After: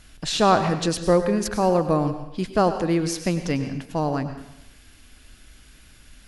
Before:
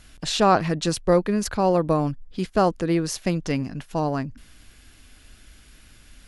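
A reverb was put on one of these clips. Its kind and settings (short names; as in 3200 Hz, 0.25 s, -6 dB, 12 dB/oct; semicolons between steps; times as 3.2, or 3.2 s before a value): plate-style reverb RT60 0.8 s, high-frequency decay 1×, pre-delay 85 ms, DRR 9 dB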